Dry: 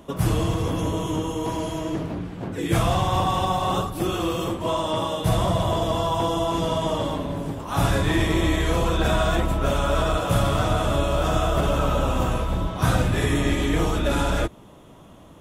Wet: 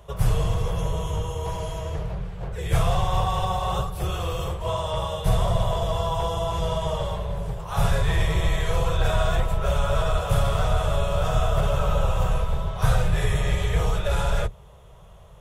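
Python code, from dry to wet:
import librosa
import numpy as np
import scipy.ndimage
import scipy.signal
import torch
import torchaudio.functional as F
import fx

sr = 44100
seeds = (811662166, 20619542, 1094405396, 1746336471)

y = fx.octave_divider(x, sr, octaves=2, level_db=4.0)
y = scipy.signal.sosfilt(scipy.signal.cheby1(2, 1.0, [160.0, 450.0], 'bandstop', fs=sr, output='sos'), y)
y = y * 10.0 ** (-2.5 / 20.0)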